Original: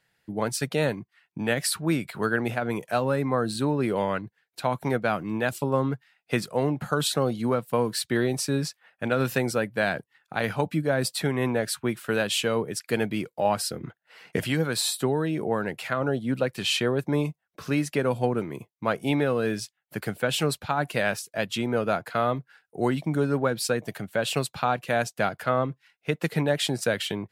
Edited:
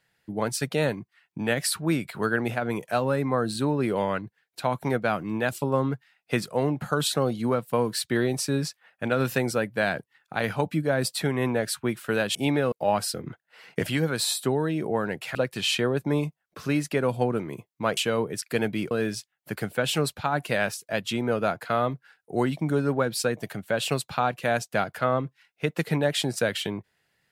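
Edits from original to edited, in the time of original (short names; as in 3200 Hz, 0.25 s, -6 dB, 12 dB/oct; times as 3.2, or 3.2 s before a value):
12.35–13.29 swap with 18.99–19.36
15.92–16.37 cut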